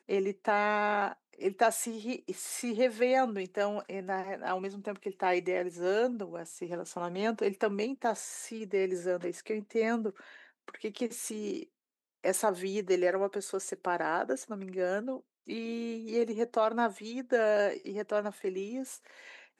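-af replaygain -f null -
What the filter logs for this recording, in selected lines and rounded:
track_gain = +11.6 dB
track_peak = 0.159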